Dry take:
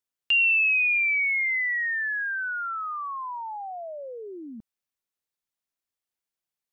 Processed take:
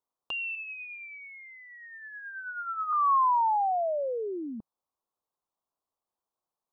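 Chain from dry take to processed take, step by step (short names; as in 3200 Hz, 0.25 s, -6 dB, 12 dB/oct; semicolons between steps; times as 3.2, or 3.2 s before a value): EQ curve 160 Hz 0 dB, 1100 Hz +11 dB, 2000 Hz -20 dB, 3600 Hz -7 dB; 0.55–2.93 harmonic tremolo 9.3 Hz, depth 70%, crossover 2100 Hz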